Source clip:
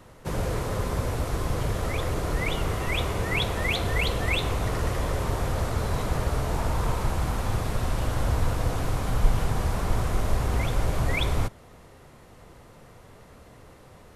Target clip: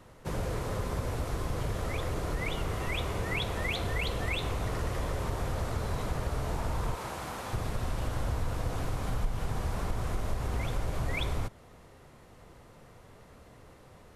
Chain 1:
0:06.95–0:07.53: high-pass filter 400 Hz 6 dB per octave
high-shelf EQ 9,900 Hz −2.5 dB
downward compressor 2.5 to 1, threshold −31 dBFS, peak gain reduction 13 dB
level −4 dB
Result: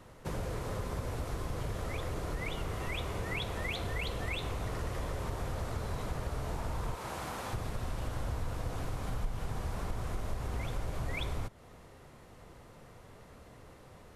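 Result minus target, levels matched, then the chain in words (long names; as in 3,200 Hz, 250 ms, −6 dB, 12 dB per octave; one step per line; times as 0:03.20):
downward compressor: peak gain reduction +4 dB
0:06.95–0:07.53: high-pass filter 400 Hz 6 dB per octave
high-shelf EQ 9,900 Hz −2.5 dB
downward compressor 2.5 to 1, threshold −24 dBFS, peak gain reduction 8.5 dB
level −4 dB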